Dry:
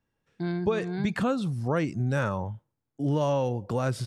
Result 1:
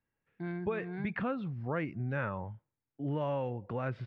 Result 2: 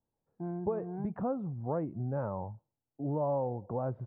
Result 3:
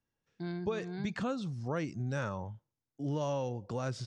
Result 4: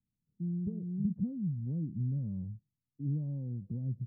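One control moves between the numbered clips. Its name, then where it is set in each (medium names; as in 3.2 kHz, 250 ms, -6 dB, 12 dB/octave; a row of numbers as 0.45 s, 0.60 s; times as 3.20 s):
four-pole ladder low-pass, frequency: 2.7 kHz, 1 kHz, 7.4 kHz, 240 Hz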